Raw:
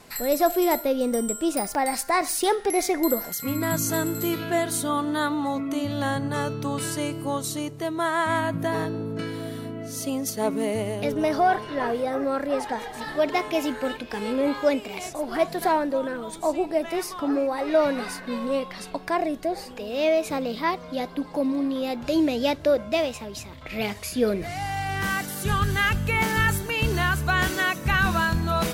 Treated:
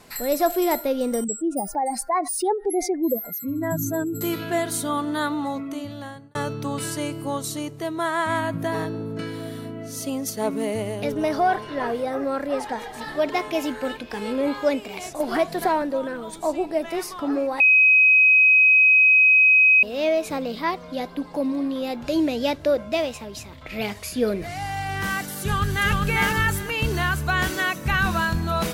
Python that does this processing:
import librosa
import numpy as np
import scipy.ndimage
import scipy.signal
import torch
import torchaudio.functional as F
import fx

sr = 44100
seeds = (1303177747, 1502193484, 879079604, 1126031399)

y = fx.spec_expand(x, sr, power=2.1, at=(1.24, 4.21))
y = fx.band_squash(y, sr, depth_pct=70, at=(15.2, 15.82))
y = fx.echo_throw(y, sr, start_s=25.41, length_s=0.51, ms=400, feedback_pct=20, wet_db=-2.0)
y = fx.edit(y, sr, fx.fade_out_span(start_s=5.39, length_s=0.96),
    fx.bleep(start_s=17.6, length_s=2.23, hz=2530.0, db=-11.5), tone=tone)